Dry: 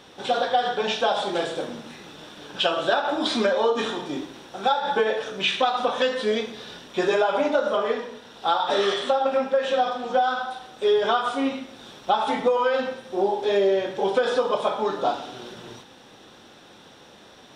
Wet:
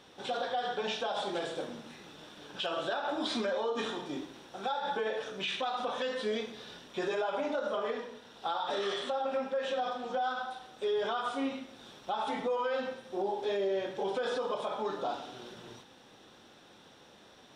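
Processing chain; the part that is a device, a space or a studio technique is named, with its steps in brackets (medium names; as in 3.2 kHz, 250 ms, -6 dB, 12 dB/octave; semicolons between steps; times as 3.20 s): clipper into limiter (hard clipper -10.5 dBFS, distortion -44 dB; peak limiter -16.5 dBFS, peak gain reduction 6 dB); trim -8 dB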